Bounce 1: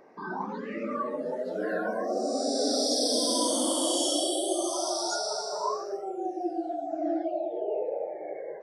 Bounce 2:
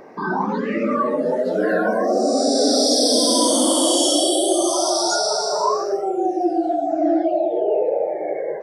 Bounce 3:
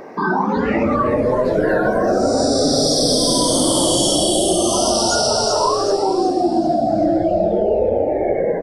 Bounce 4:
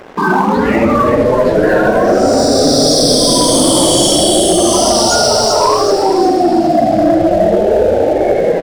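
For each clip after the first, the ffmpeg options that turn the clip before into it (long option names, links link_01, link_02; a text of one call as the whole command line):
ffmpeg -i in.wav -filter_complex "[0:a]lowshelf=frequency=170:gain=5,acontrast=81,asplit=2[link_01][link_02];[link_02]alimiter=limit=-18.5dB:level=0:latency=1,volume=-2dB[link_03];[link_01][link_03]amix=inputs=2:normalize=0" out.wav
ffmpeg -i in.wav -filter_complex "[0:a]acompressor=threshold=-21dB:ratio=4,asplit=2[link_01][link_02];[link_02]asplit=5[link_03][link_04][link_05][link_06][link_07];[link_03]adelay=380,afreqshift=-120,volume=-8.5dB[link_08];[link_04]adelay=760,afreqshift=-240,volume=-14.9dB[link_09];[link_05]adelay=1140,afreqshift=-360,volume=-21.3dB[link_10];[link_06]adelay=1520,afreqshift=-480,volume=-27.6dB[link_11];[link_07]adelay=1900,afreqshift=-600,volume=-34dB[link_12];[link_08][link_09][link_10][link_11][link_12]amix=inputs=5:normalize=0[link_13];[link_01][link_13]amix=inputs=2:normalize=0,volume=6.5dB" out.wav
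ffmpeg -i in.wav -filter_complex "[0:a]asplit=2[link_01][link_02];[link_02]adelay=80,highpass=300,lowpass=3400,asoftclip=type=hard:threshold=-13.5dB,volume=-7dB[link_03];[link_01][link_03]amix=inputs=2:normalize=0,acontrast=73,aeval=exprs='sgn(val(0))*max(abs(val(0))-0.0316,0)':channel_layout=same,volume=1dB" out.wav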